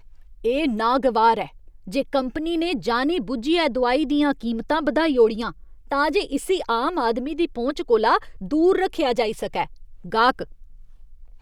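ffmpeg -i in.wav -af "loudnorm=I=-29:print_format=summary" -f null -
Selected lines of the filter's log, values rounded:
Input Integrated:    -22.0 LUFS
Input True Peak:      -5.2 dBTP
Input LRA:             1.8 LU
Input Threshold:     -32.8 LUFS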